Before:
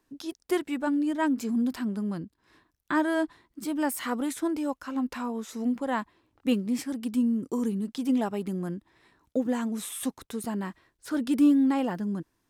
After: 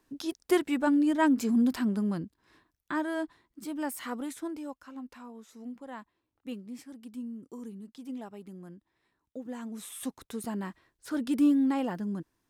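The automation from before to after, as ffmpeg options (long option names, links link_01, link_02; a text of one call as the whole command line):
ffmpeg -i in.wav -af "volume=13dB,afade=type=out:start_time=1.93:duration=1.04:silence=0.398107,afade=type=out:start_time=4.14:duration=0.94:silence=0.398107,afade=type=in:start_time=9.39:duration=0.96:silence=0.281838" out.wav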